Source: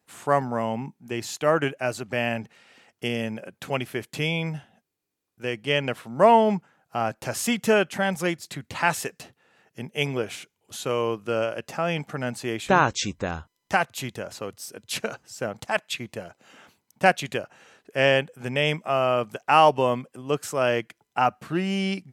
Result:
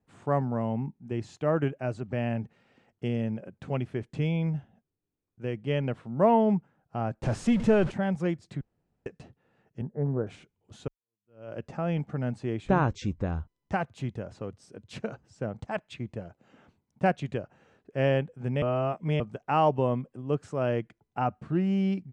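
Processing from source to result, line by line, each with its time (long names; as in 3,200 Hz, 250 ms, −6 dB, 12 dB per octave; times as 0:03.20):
0:07.23–0:07.92: converter with a step at zero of −25 dBFS
0:08.61–0:09.06: fill with room tone
0:09.81–0:10.27: Butterworth low-pass 1,800 Hz 96 dB per octave
0:10.88–0:11.53: fade in exponential
0:18.62–0:19.20: reverse
whole clip: Butterworth low-pass 9,500 Hz; spectral tilt −4 dB per octave; level −8.5 dB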